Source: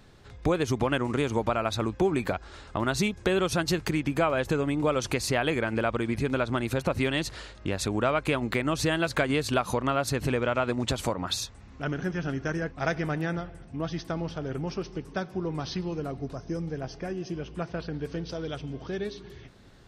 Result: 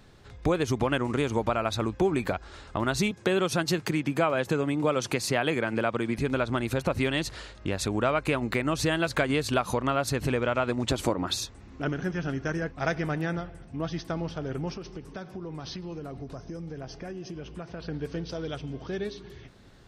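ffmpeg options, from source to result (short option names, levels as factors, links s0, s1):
-filter_complex "[0:a]asettb=1/sr,asplit=3[s0][s1][s2];[s0]atrim=end=3.114[s3];[s1]atrim=start=3.11:end=6.19,asetpts=PTS-STARTPTS,afade=t=in:d=0.004:c=qsin,afade=t=out:st=3.076:d=0.004:c=qsin,highpass=f=110:w=0.5412,highpass=f=110:w=1.3066[s4];[s2]atrim=start=6.186[s5];[s3][s4]acrossfade=d=0.004:c1=hsin:c2=qsin[s6];[s6][s5]acrossfade=d=0.004:c1=qsin:c2=hsin,asettb=1/sr,asplit=3[s7][s8][s9];[s7]atrim=end=8.124[s10];[s8]atrim=start=8.12:end=8.75,asetpts=PTS-STARTPTS,afade=t=in:d=0.004:c=qsin,afade=t=out:st=0.626:d=0.004:c=qsin,bandreject=f=3300:w=12[s11];[s9]atrim=start=8.746[s12];[s10][s11]acrossfade=d=0.004:c1=hsin:c2=qsin[s13];[s13][s12]acrossfade=d=0.004:c1=qsin:c2=hsin,asettb=1/sr,asplit=3[s14][s15][s16];[s14]atrim=end=10.914[s17];[s15]atrim=start=10.91:end=11.89,asetpts=PTS-STARTPTS,afade=t=in:d=0.004:c=qsin,afade=t=out:st=0.976:d=0.004:c=qsin,equalizer=f=330:t=o:w=0.77:g=7.5[s18];[s16]atrim=start=11.886[s19];[s17][s18]acrossfade=d=0.004:c1=hsin:c2=qsin[s20];[s20][s19]acrossfade=d=0.004:c1=qsin:c2=hsin,asettb=1/sr,asplit=3[s21][s22][s23];[s21]atrim=end=14.754[s24];[s22]atrim=start=14.75:end=17.86,asetpts=PTS-STARTPTS,afade=t=in:d=0.004:c=qsin,afade=t=out:st=3.106:d=0.004:c=qsin,acompressor=threshold=0.02:ratio=6:attack=3.2:release=140:knee=1:detection=peak[s25];[s23]atrim=start=17.856[s26];[s24][s25]acrossfade=d=0.004:c1=hsin:c2=qsin[s27];[s27][s26]acrossfade=d=0.004:c1=qsin:c2=hsin"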